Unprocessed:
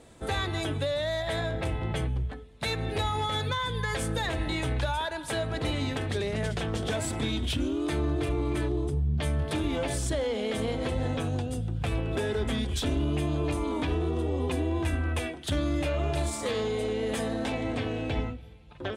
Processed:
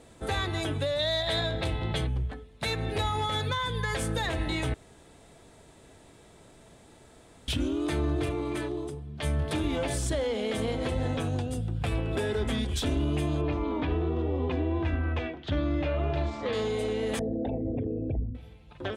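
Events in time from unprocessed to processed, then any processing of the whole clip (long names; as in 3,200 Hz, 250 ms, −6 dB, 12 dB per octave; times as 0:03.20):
0:00.99–0:02.07: parametric band 3,900 Hz +10.5 dB 0.54 octaves
0:04.74–0:07.48: fill with room tone
0:08.29–0:09.22: high-pass filter 160 Hz → 570 Hz 6 dB per octave
0:11.58–0:12.36: notch filter 6,200 Hz, Q 13
0:13.41–0:16.53: Gaussian smoothing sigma 2.2 samples
0:17.19–0:18.35: spectral envelope exaggerated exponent 3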